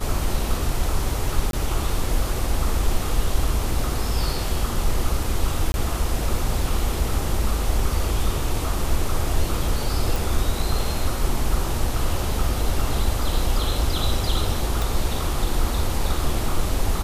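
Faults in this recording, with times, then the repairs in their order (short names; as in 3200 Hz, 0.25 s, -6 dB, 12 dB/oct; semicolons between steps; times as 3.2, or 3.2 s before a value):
1.51–1.53 gap 22 ms
5.72–5.74 gap 20 ms
10.16 pop
14.82 pop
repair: de-click; interpolate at 1.51, 22 ms; interpolate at 5.72, 20 ms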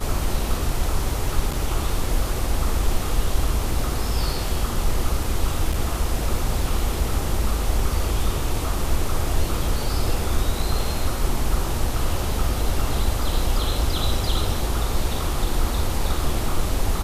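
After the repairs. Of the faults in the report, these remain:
none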